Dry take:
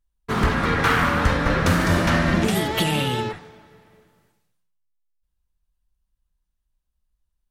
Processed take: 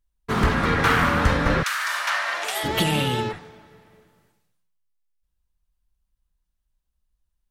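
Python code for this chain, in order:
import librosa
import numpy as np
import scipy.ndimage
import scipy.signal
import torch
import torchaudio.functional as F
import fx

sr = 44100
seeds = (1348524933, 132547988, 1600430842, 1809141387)

y = fx.highpass(x, sr, hz=fx.line((1.62, 1300.0), (2.63, 580.0)), slope=24, at=(1.62, 2.63), fade=0.02)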